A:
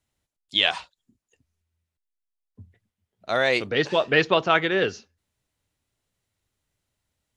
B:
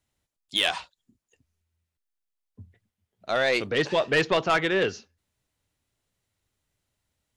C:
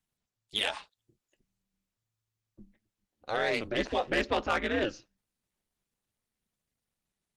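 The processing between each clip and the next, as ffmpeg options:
ffmpeg -i in.wav -af "asoftclip=type=tanh:threshold=-14.5dB" out.wav
ffmpeg -i in.wav -af "aeval=exprs='val(0)*sin(2*PI*110*n/s)':channel_layout=same,volume=-2.5dB" -ar 48000 -c:a libopus -b:a 24k out.opus

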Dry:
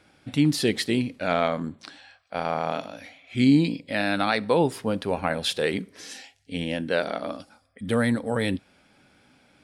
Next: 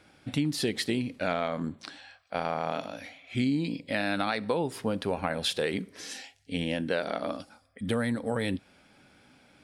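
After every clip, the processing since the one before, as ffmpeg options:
ffmpeg -i in.wav -af "acompressor=threshold=-25dB:ratio=5" out.wav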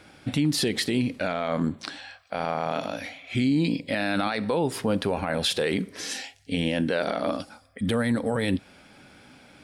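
ffmpeg -i in.wav -af "alimiter=limit=-22.5dB:level=0:latency=1:release=26,volume=7.5dB" out.wav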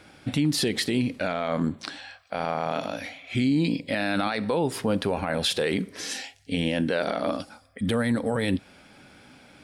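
ffmpeg -i in.wav -af anull out.wav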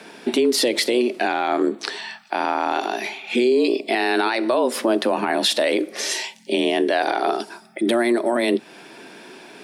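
ffmpeg -i in.wav -filter_complex "[0:a]asplit=2[link_01][link_02];[link_02]acompressor=threshold=-32dB:ratio=6,volume=1dB[link_03];[link_01][link_03]amix=inputs=2:normalize=0,afreqshift=120,volume=3dB" out.wav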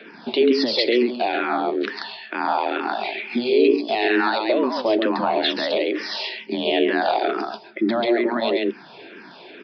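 ffmpeg -i in.wav -filter_complex "[0:a]asplit=2[link_01][link_02];[link_02]aecho=0:1:137:0.631[link_03];[link_01][link_03]amix=inputs=2:normalize=0,aresample=11025,aresample=44100,asplit=2[link_04][link_05];[link_05]afreqshift=-2.2[link_06];[link_04][link_06]amix=inputs=2:normalize=1,volume=1.5dB" out.wav

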